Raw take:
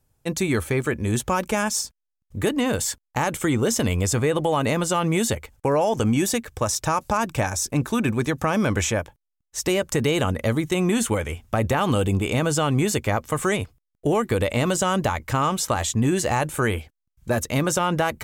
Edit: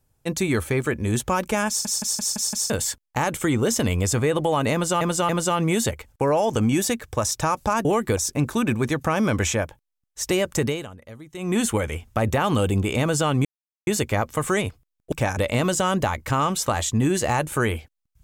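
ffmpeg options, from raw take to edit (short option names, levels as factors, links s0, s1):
-filter_complex "[0:a]asplit=16[s0][s1][s2][s3][s4][s5][s6][s7][s8][s9][s10][s11][s12][s13][s14][s15];[s0]atrim=end=1.852[s16];[s1]atrim=start=1.678:end=1.852[s17];[s2]atrim=start=1.678:end=1.852[s18];[s3]atrim=start=1.678:end=1.852[s19];[s4]atrim=start=1.678:end=1.852[s20];[s5]atrim=start=1.678:end=1.852[s21];[s6]atrim=start=2.698:end=5.012[s22];[s7]atrim=start=4.728:end=5.012[s23];[s8]atrim=start=4.728:end=7.292[s24];[s9]atrim=start=14.068:end=14.392[s25];[s10]atrim=start=7.538:end=10.31,asetpts=PTS-STARTPTS,afade=t=out:st=2.472:d=0.3:c=qua:silence=0.112202[s26];[s11]atrim=start=10.31:end=10.63,asetpts=PTS-STARTPTS,volume=0.112[s27];[s12]atrim=start=10.63:end=12.82,asetpts=PTS-STARTPTS,afade=t=in:d=0.3:c=qua:silence=0.112202,afade=t=out:st=2.186:d=0.004:c=hsin,apad=pad_dur=0.42[s28];[s13]atrim=start=12.82:end=14.072,asetpts=PTS-STARTPTS,afade=t=in:d=0.004:c=hsin[s29];[s14]atrim=start=7.288:end=7.542[s30];[s15]atrim=start=14.388[s31];[s16][s17]acrossfade=d=0.004:c1=hsin:c2=hsin[s32];[s32][s18]acrossfade=d=0.004:c1=hsin:c2=hsin[s33];[s33][s19]acrossfade=d=0.004:c1=hsin:c2=hsin[s34];[s34][s20]acrossfade=d=0.004:c1=hsin:c2=hsin[s35];[s35][s21]acrossfade=d=0.004:c1=hsin:c2=hsin[s36];[s36][s22]acrossfade=d=0.004:c1=hsin:c2=hsin[s37];[s37][s23]acrossfade=d=0.004:c1=hsin:c2=hsin[s38];[s38][s24]acrossfade=d=0.004:c1=hsin:c2=hsin[s39];[s39][s25]acrossfade=d=0.004:c1=hsin:c2=hsin[s40];[s26][s27][s28][s29]concat=n=4:v=0:a=1[s41];[s40][s41]acrossfade=d=0.004:c1=hsin:c2=hsin[s42];[s42][s30]acrossfade=d=0.004:c1=hsin:c2=hsin[s43];[s43][s31]acrossfade=d=0.004:c1=hsin:c2=hsin"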